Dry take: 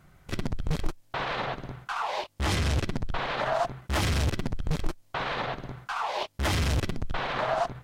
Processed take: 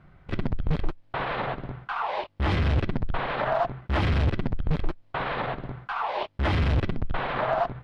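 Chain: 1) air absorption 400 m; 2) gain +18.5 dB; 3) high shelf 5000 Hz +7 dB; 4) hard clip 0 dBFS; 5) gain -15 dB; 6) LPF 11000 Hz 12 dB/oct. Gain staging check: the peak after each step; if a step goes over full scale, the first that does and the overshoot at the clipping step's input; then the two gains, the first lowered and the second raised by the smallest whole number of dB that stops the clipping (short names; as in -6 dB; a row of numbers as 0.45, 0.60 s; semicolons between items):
-14.0, +4.5, +4.5, 0.0, -15.0, -15.0 dBFS; step 2, 4.5 dB; step 2 +13.5 dB, step 5 -10 dB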